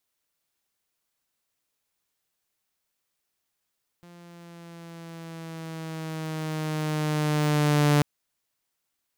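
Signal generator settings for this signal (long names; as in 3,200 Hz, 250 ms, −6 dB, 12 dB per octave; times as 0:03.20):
pitch glide with a swell saw, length 3.99 s, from 174 Hz, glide −3 semitones, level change +30 dB, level −14.5 dB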